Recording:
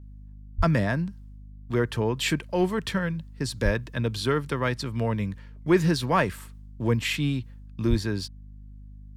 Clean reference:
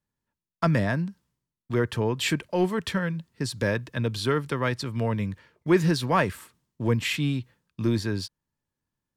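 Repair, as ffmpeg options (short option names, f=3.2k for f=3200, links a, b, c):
-filter_complex "[0:a]bandreject=f=50.8:t=h:w=4,bandreject=f=101.6:t=h:w=4,bandreject=f=152.4:t=h:w=4,bandreject=f=203.2:t=h:w=4,bandreject=f=254:t=h:w=4,asplit=3[a][b][c];[a]afade=t=out:st=0.57:d=0.02[d];[b]highpass=f=140:w=0.5412,highpass=f=140:w=1.3066,afade=t=in:st=0.57:d=0.02,afade=t=out:st=0.69:d=0.02[e];[c]afade=t=in:st=0.69:d=0.02[f];[d][e][f]amix=inputs=3:normalize=0,asplit=3[g][h][i];[g]afade=t=out:st=3.64:d=0.02[j];[h]highpass=f=140:w=0.5412,highpass=f=140:w=1.3066,afade=t=in:st=3.64:d=0.02,afade=t=out:st=3.76:d=0.02[k];[i]afade=t=in:st=3.76:d=0.02[l];[j][k][l]amix=inputs=3:normalize=0,asplit=3[m][n][o];[m]afade=t=out:st=7.89:d=0.02[p];[n]highpass=f=140:w=0.5412,highpass=f=140:w=1.3066,afade=t=in:st=7.89:d=0.02,afade=t=out:st=8.01:d=0.02[q];[o]afade=t=in:st=8.01:d=0.02[r];[p][q][r]amix=inputs=3:normalize=0"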